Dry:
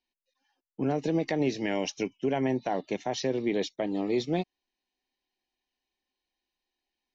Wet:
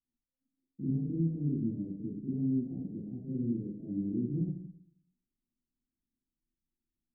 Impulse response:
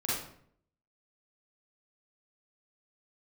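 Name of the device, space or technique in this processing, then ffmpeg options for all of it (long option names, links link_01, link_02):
club heard from the street: -filter_complex "[0:a]alimiter=level_in=1dB:limit=-24dB:level=0:latency=1:release=109,volume=-1dB,lowpass=frequency=230:width=0.5412,lowpass=frequency=230:width=1.3066[link_01];[1:a]atrim=start_sample=2205[link_02];[link_01][link_02]afir=irnorm=-1:irlink=0"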